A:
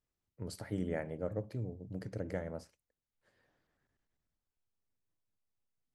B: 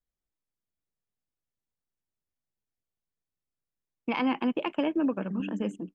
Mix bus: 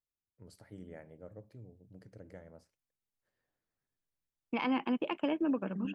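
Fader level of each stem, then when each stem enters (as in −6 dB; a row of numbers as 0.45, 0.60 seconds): −12.5, −4.5 decibels; 0.00, 0.45 seconds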